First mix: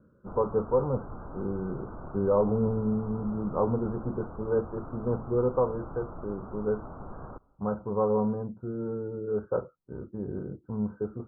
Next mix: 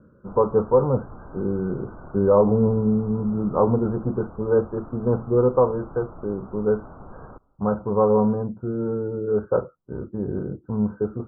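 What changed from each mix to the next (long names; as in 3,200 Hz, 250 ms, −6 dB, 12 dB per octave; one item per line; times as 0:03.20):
speech +7.5 dB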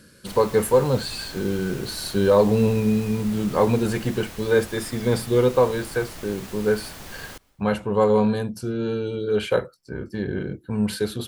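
master: remove Butterworth low-pass 1,400 Hz 96 dB per octave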